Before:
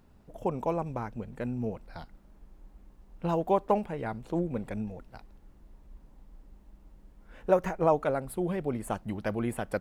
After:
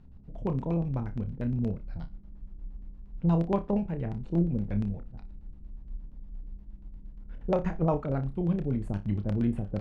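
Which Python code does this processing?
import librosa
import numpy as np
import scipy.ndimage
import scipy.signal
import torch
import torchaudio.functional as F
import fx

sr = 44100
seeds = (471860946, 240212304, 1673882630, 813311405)

y = fx.bass_treble(x, sr, bass_db=14, treble_db=3)
y = fx.filter_lfo_lowpass(y, sr, shape='square', hz=8.5, low_hz=430.0, high_hz=3700.0, q=0.84)
y = fx.room_flutter(y, sr, wall_m=5.1, rt60_s=0.2)
y = y * librosa.db_to_amplitude(-5.0)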